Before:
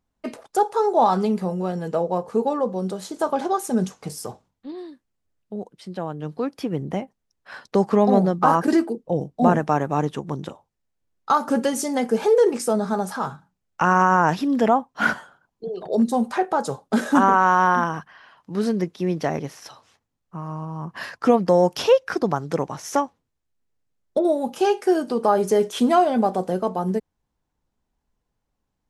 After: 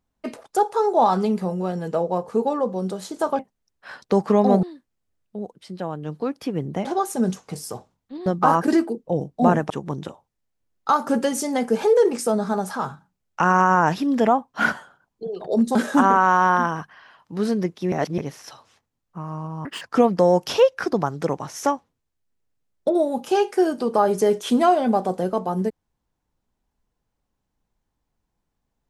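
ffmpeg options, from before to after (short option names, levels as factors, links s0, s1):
-filter_complex "[0:a]asplit=11[s0][s1][s2][s3][s4][s5][s6][s7][s8][s9][s10];[s0]atrim=end=3.392[s11];[s1]atrim=start=7.018:end=8.262[s12];[s2]atrim=start=4.798:end=7.022[s13];[s3]atrim=start=3.388:end=4.802[s14];[s4]atrim=start=8.258:end=9.702[s15];[s5]atrim=start=10.108:end=16.162[s16];[s6]atrim=start=16.928:end=19.102[s17];[s7]atrim=start=19.098:end=19.362,asetpts=PTS-STARTPTS,areverse[s18];[s8]atrim=start=19.358:end=20.834[s19];[s9]atrim=start=20.83:end=21.11,asetpts=PTS-STARTPTS,asetrate=74970,aresample=44100[s20];[s10]atrim=start=21.106[s21];[s11][s12]acrossfade=d=0.004:c1=hsin:c2=hsin[s22];[s22][s13]acrossfade=d=0.004:c1=hsin:c2=hsin[s23];[s23][s14]acrossfade=d=0.004:c1=hsin:c2=hsin[s24];[s24][s15]acrossfade=d=0.004:c1=hsin:c2=hsin[s25];[s25][s16]acrossfade=d=0.004:c1=hsin:c2=hsin[s26];[s26][s17]acrossfade=d=0.004:c1=hsin:c2=hsin[s27];[s27][s18]acrossfade=d=0.004:c1=hsin:c2=hsin[s28];[s28][s19]acrossfade=d=0.004:c1=hsin:c2=hsin[s29];[s29][s20]acrossfade=d=0.004:c1=hsin:c2=hsin[s30];[s30][s21]acrossfade=d=0.004:c1=hsin:c2=hsin"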